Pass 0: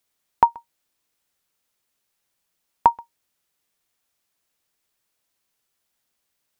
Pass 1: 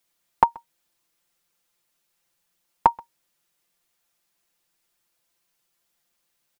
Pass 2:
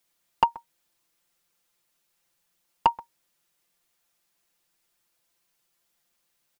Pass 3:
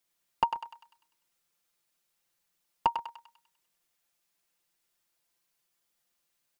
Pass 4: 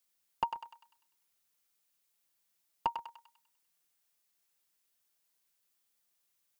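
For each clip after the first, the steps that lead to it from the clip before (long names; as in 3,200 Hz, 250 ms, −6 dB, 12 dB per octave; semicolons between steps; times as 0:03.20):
comb filter 5.8 ms, depth 71%
soft clipping −9.5 dBFS, distortion −11 dB
feedback echo with a high-pass in the loop 99 ms, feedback 53%, high-pass 990 Hz, level −5.5 dB; level −5.5 dB
background noise blue −73 dBFS; level −6 dB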